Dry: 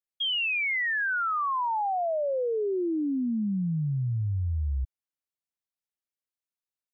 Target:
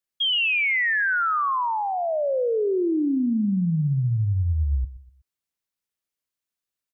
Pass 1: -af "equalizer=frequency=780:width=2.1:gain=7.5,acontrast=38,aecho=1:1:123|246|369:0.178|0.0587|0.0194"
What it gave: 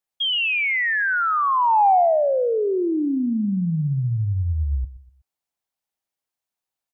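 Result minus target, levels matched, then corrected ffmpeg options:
1,000 Hz band +4.5 dB
-af "equalizer=frequency=780:width=2.1:gain=-4,acontrast=38,aecho=1:1:123|246|369:0.178|0.0587|0.0194"

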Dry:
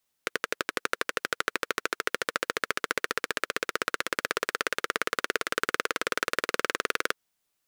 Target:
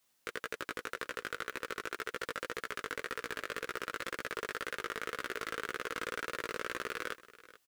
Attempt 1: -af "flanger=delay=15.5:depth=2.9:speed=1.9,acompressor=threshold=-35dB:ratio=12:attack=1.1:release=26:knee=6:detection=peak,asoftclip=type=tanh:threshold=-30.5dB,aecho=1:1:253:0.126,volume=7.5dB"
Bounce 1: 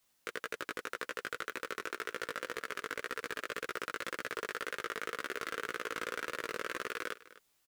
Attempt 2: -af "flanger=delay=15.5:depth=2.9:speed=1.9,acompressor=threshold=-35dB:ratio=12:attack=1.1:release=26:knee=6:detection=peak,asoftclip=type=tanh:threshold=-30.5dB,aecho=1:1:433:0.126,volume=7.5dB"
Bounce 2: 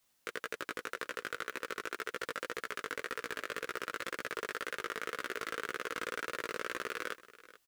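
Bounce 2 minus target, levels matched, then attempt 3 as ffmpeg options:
125 Hz band −3.5 dB
-af "flanger=delay=15.5:depth=2.9:speed=1.9,acompressor=threshold=-35dB:ratio=12:attack=1.1:release=26:knee=6:detection=peak,lowshelf=frequency=89:gain=-7,asoftclip=type=tanh:threshold=-30.5dB,aecho=1:1:433:0.126,volume=7.5dB"

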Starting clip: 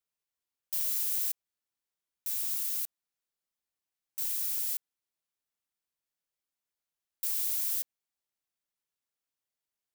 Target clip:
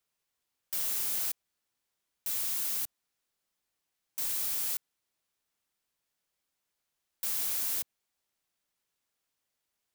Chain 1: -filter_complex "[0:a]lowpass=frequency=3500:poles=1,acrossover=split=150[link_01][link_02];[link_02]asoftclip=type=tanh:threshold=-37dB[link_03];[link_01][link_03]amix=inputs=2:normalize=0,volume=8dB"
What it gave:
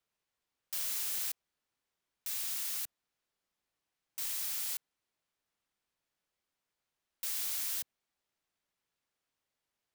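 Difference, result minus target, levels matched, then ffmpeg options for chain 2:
4,000 Hz band +3.0 dB
-filter_complex "[0:a]lowpass=frequency=12000:poles=1,acrossover=split=150[link_01][link_02];[link_02]asoftclip=type=tanh:threshold=-37dB[link_03];[link_01][link_03]amix=inputs=2:normalize=0,volume=8dB"

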